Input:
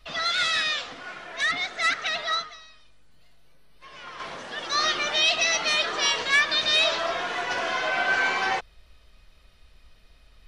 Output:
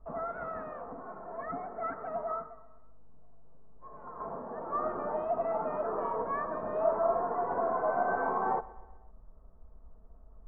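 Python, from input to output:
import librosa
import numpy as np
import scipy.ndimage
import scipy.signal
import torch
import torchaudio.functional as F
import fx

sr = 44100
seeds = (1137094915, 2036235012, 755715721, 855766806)

y = scipy.signal.sosfilt(scipy.signal.butter(6, 1100.0, 'lowpass', fs=sr, output='sos'), x)
y = y + 0.36 * np.pad(y, (int(4.5 * sr / 1000.0), 0))[:len(y)]
y = fx.echo_feedback(y, sr, ms=127, feedback_pct=54, wet_db=-19.5)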